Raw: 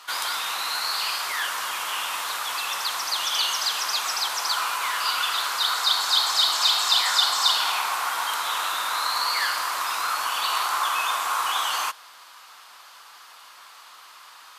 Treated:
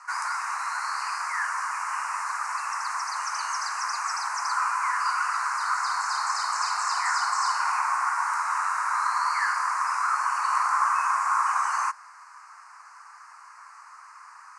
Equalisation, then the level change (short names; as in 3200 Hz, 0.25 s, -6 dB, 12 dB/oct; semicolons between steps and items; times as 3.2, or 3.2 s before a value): elliptic band-pass 970–9700 Hz, stop band 80 dB; Butterworth band-stop 3400 Hz, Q 0.82; air absorption 74 m; +3.5 dB